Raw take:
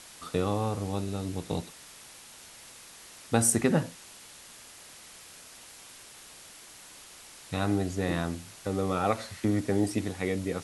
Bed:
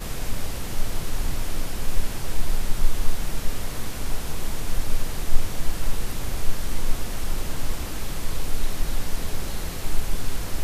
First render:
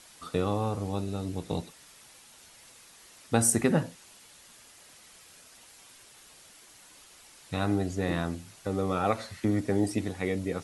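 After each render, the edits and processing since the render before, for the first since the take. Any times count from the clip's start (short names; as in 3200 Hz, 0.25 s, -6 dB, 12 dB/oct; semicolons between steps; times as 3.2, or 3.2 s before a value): denoiser 6 dB, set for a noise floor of -50 dBFS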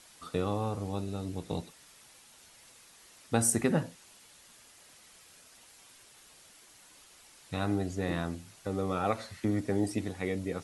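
gain -3 dB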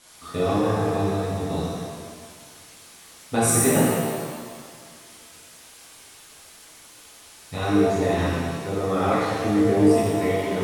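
analogue delay 0.308 s, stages 2048, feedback 47%, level -22 dB; shimmer reverb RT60 1.6 s, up +7 st, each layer -8 dB, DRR -8.5 dB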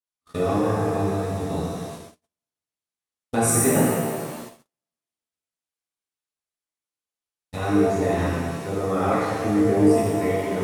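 gate -36 dBFS, range -47 dB; dynamic EQ 3600 Hz, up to -6 dB, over -46 dBFS, Q 1.5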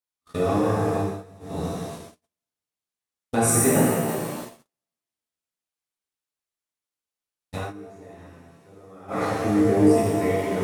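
0.97–1.67 dip -20 dB, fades 0.27 s; 4.05–4.45 doubler 36 ms -3.5 dB; 7.57–9.24 dip -22 dB, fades 0.16 s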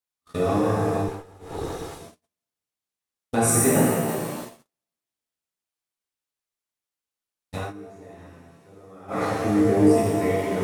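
1.08–2.01 minimum comb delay 2.4 ms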